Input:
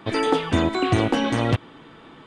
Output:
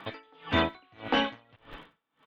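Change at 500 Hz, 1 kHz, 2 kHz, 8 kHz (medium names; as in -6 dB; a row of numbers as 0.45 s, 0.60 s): -11.0 dB, -7.5 dB, -4.5 dB, under -20 dB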